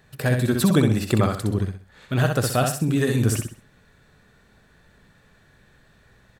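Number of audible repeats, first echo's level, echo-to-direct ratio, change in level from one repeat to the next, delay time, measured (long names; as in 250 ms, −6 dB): 4, −5.0 dB, −4.5 dB, −10.0 dB, 64 ms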